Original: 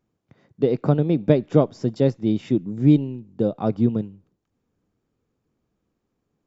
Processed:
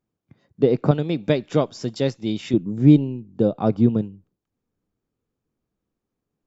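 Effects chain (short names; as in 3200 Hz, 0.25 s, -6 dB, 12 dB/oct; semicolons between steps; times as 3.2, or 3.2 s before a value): spectral noise reduction 9 dB; 0.91–2.54 tilt shelf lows -7 dB, about 1300 Hz; gain +2.5 dB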